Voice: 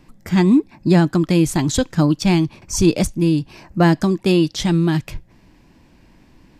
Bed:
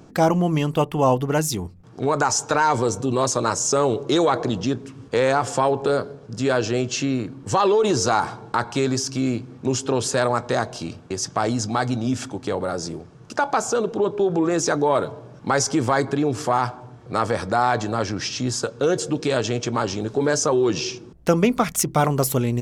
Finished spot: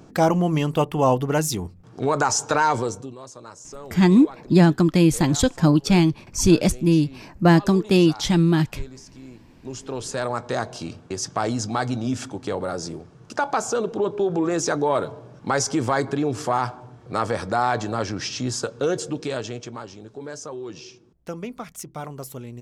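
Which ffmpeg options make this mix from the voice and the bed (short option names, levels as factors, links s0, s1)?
-filter_complex "[0:a]adelay=3650,volume=0.891[s0];[1:a]volume=7.5,afade=t=out:st=2.66:d=0.49:silence=0.105925,afade=t=in:st=9.42:d=1.39:silence=0.125893,afade=t=out:st=18.77:d=1.11:silence=0.223872[s1];[s0][s1]amix=inputs=2:normalize=0"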